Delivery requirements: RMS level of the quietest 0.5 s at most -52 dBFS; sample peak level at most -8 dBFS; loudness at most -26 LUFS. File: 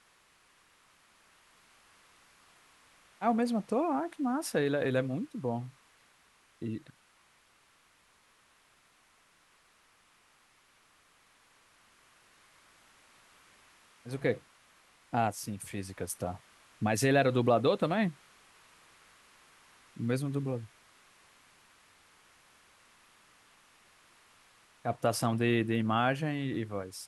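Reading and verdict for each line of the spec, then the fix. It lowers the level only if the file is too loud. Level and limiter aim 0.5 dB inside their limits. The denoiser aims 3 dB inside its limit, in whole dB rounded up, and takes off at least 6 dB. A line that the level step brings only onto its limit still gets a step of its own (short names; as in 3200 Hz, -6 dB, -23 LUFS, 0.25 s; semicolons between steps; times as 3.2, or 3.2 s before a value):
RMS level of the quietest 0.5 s -66 dBFS: OK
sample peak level -13.5 dBFS: OK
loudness -31.5 LUFS: OK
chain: none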